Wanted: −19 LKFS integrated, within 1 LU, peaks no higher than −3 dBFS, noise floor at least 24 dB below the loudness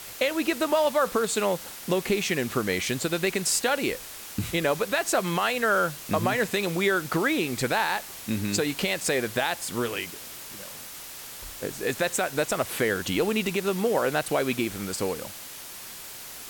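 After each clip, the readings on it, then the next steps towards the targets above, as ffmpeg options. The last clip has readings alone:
background noise floor −41 dBFS; target noise floor −51 dBFS; integrated loudness −26.5 LKFS; sample peak −12.0 dBFS; target loudness −19.0 LKFS
→ -af "afftdn=noise_reduction=10:noise_floor=-41"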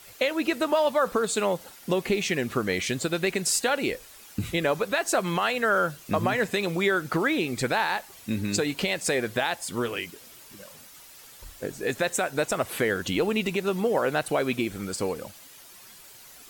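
background noise floor −49 dBFS; target noise floor −51 dBFS
→ -af "afftdn=noise_reduction=6:noise_floor=-49"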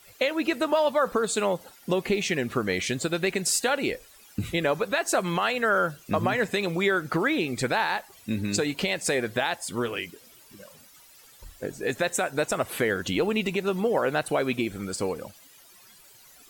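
background noise floor −53 dBFS; integrated loudness −26.5 LKFS; sample peak −12.5 dBFS; target loudness −19.0 LKFS
→ -af "volume=7.5dB"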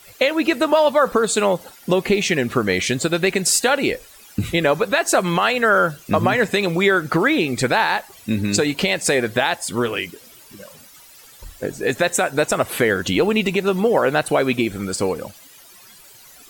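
integrated loudness −19.0 LKFS; sample peak −5.0 dBFS; background noise floor −46 dBFS

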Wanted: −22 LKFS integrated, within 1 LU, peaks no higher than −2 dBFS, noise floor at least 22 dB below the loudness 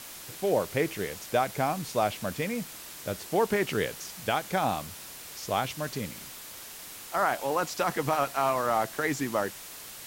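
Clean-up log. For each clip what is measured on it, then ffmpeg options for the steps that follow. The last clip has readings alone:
background noise floor −44 dBFS; target noise floor −52 dBFS; integrated loudness −29.5 LKFS; sample peak −13.5 dBFS; target loudness −22.0 LKFS
→ -af "afftdn=noise_reduction=8:noise_floor=-44"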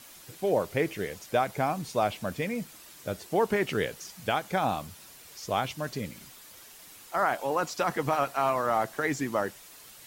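background noise floor −51 dBFS; target noise floor −52 dBFS
→ -af "afftdn=noise_reduction=6:noise_floor=-51"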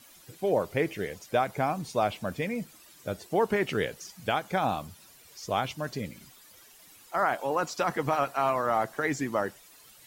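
background noise floor −55 dBFS; integrated loudness −30.0 LKFS; sample peak −13.5 dBFS; target loudness −22.0 LKFS
→ -af "volume=8dB"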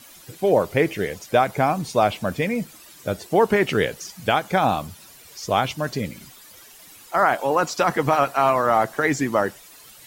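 integrated loudness −22.0 LKFS; sample peak −5.5 dBFS; background noise floor −47 dBFS

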